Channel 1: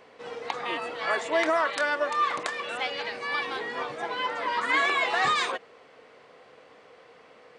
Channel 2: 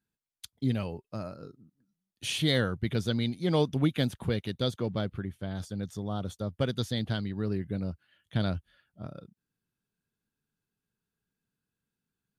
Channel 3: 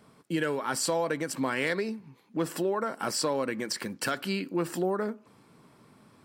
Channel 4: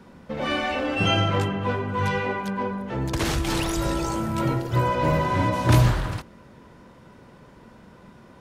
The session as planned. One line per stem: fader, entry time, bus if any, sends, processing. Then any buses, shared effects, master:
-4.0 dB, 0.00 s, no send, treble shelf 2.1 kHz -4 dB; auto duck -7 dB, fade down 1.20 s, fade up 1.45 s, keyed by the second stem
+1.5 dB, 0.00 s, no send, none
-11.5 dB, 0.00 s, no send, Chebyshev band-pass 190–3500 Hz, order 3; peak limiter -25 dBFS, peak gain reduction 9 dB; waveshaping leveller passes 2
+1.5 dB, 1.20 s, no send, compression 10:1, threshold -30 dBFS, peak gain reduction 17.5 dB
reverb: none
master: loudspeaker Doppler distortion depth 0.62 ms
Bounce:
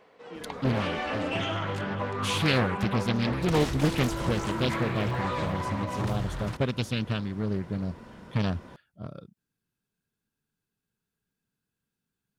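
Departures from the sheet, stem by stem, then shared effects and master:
stem 3: missing waveshaping leveller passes 2; stem 4: entry 1.20 s -> 0.35 s

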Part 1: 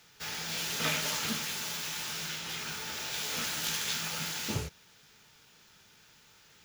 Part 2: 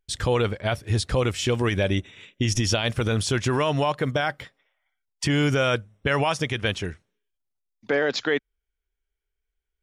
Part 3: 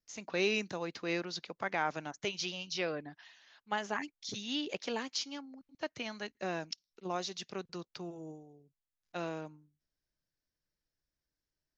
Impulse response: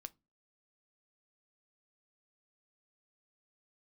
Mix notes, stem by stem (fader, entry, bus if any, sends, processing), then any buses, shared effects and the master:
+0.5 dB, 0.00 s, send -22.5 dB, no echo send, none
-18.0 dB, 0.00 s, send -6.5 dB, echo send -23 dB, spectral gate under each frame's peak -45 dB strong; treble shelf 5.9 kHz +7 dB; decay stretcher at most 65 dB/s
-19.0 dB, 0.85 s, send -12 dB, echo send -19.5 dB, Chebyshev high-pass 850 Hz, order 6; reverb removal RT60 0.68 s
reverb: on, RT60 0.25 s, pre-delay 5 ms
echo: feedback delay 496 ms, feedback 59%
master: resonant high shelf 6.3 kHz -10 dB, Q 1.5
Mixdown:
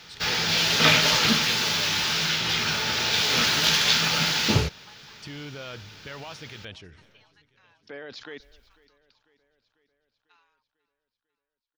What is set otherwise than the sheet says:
stem 1 +0.5 dB -> +12.0 dB; stem 2: send off; stem 3: entry 0.85 s -> 1.15 s

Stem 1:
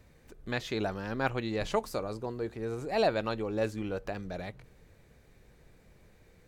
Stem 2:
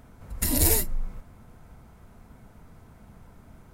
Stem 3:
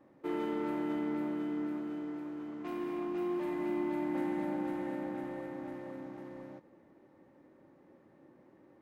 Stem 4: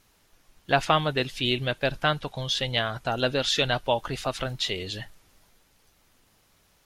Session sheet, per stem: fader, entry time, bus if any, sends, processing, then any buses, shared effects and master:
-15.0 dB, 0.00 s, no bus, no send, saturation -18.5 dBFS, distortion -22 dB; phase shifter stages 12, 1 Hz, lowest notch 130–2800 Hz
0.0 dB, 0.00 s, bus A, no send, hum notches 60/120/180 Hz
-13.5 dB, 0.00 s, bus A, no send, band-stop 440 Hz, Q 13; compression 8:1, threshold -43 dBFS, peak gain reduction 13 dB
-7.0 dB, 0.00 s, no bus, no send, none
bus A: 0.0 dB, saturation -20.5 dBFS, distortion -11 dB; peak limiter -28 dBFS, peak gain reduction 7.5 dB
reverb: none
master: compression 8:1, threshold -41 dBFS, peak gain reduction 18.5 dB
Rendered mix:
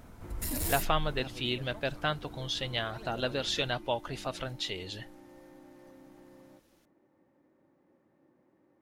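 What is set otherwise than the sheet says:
stem 3 -13.5 dB -> -7.0 dB; master: missing compression 8:1, threshold -41 dBFS, peak gain reduction 18.5 dB

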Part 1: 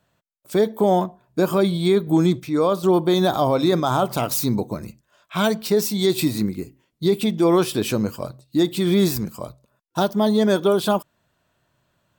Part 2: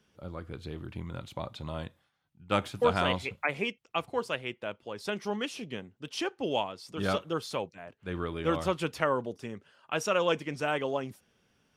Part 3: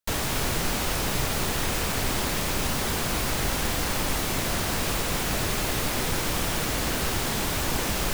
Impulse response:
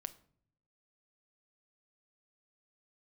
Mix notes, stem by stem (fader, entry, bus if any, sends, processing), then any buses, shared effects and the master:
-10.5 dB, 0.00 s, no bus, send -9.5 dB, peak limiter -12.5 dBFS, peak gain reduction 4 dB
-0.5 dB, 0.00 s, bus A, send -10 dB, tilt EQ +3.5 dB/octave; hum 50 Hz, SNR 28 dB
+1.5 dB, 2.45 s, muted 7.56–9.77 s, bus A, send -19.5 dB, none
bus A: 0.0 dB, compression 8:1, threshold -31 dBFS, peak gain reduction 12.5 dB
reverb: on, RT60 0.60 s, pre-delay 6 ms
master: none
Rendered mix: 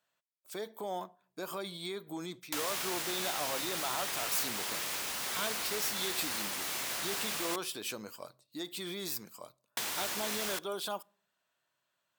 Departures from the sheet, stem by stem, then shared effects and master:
stem 2: muted; master: extra high-pass 1.3 kHz 6 dB/octave

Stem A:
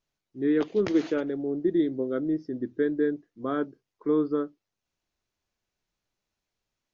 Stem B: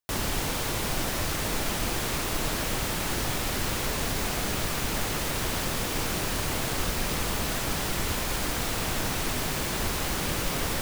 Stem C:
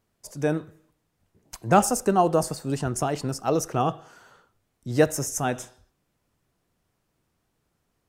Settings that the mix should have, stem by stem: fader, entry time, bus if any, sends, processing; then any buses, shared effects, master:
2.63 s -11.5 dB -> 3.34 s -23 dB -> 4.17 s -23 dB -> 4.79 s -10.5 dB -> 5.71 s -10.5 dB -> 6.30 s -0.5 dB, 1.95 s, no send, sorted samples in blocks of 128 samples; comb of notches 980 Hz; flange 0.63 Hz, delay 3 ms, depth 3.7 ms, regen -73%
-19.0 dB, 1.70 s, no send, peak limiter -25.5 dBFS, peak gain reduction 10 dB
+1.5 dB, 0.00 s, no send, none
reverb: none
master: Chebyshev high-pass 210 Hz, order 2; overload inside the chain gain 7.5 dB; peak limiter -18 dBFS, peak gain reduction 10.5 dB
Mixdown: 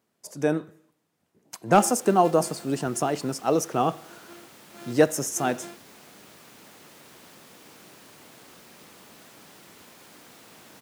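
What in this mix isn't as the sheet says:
stem A: entry 1.95 s -> 1.30 s; stem B: missing peak limiter -25.5 dBFS, peak gain reduction 10 dB; master: missing peak limiter -18 dBFS, peak gain reduction 10.5 dB

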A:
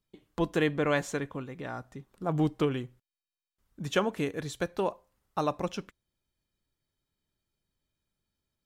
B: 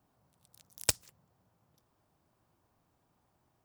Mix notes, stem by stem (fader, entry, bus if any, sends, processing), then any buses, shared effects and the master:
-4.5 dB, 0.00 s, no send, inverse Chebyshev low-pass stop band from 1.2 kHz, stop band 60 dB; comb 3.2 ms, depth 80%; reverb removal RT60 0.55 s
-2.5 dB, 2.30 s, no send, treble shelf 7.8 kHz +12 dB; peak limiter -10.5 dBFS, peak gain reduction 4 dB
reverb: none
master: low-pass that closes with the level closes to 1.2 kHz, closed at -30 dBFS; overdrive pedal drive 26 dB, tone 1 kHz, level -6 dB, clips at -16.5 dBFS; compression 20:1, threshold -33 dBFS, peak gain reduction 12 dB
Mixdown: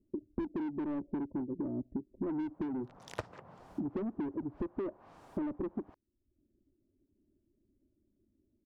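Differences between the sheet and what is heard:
stem A -4.5 dB -> +6.0 dB; stem B -2.5 dB -> +5.5 dB

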